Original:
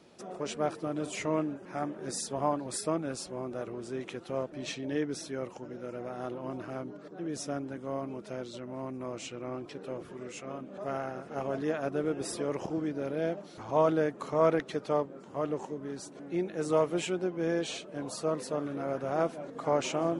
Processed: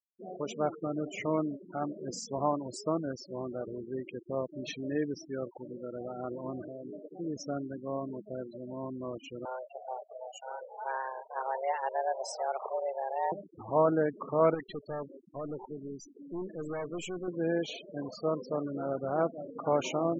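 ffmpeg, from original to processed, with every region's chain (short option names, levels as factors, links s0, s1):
-filter_complex "[0:a]asettb=1/sr,asplit=3[s0][s1][s2];[s0]atrim=end=6.644[s3];[s1]atrim=start=6.64:end=7.06,asetpts=PTS-STARTPTS,afade=t=in:d=0.004:c=qsin,afade=t=out:st=0.416:d=0.004:c=qsin,lowpass=f=550:t=q:w=2.1,acompressor=threshold=0.0141:ratio=16:attack=3.2:release=140:knee=1:detection=peak[s4];[s2]atrim=start=7.056[s5];[s3][s4]acrossfade=d=0.004:c1=hsin:c2=qsin[s6];[s6][s5]acrossfade=d=0.004:c1=qsin:c2=hsin,asettb=1/sr,asplit=3[s7][s8][s9];[s7]atrim=end=9.454[s10];[s8]atrim=start=9.45:end=13.32,asetpts=PTS-STARTPTS,afade=t=in:d=0.004:c=qsin,afade=t=out:st=3.866:d=0.004:c=qsin,highpass=150,bass=f=250:g=-2,treble=f=4000:g=4,afreqshift=260[s11];[s9]atrim=start=13.316[s12];[s10][s11]acrossfade=d=0.004:c1=hsin:c2=qsin[s13];[s13][s12]acrossfade=d=0.004:c1=qsin:c2=hsin,asettb=1/sr,asplit=3[s14][s15][s16];[s14]atrim=end=14.544[s17];[s15]atrim=start=14.54:end=17.28,asetpts=PTS-STARTPTS,afade=t=in:d=0.004:c=qsin,afade=t=out:st=2.736:d=0.004:c=qsin,aemphasis=mode=production:type=cd,aeval=exprs='(tanh(44.7*val(0)+0.4)-tanh(0.4))/44.7':c=same[s18];[s16]atrim=start=17.276[s19];[s17][s18]acrossfade=d=0.004:c1=hsin:c2=qsin[s20];[s20][s19]acrossfade=d=0.004:c1=qsin:c2=hsin,lowpass=f=7600:w=0.5412,lowpass=f=7600:w=1.3066,afftfilt=real='re*gte(hypot(re,im),0.02)':imag='im*gte(hypot(re,im),0.02)':win_size=1024:overlap=0.75"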